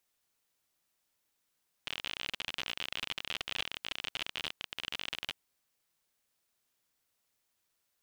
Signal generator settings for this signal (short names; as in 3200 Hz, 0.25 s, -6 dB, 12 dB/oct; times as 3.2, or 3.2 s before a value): random clicks 51/s -19.5 dBFS 3.45 s